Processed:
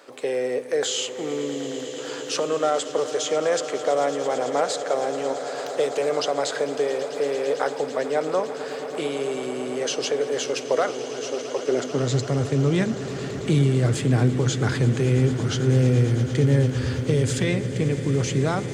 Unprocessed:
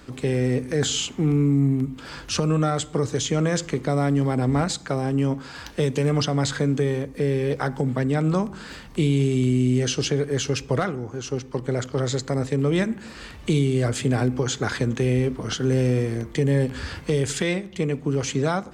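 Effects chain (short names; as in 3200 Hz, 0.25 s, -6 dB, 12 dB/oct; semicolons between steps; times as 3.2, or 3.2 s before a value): high-pass sweep 540 Hz -> 93 Hz, 11.55–12.28; swelling echo 0.111 s, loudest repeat 8, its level -17.5 dB; gain -1.5 dB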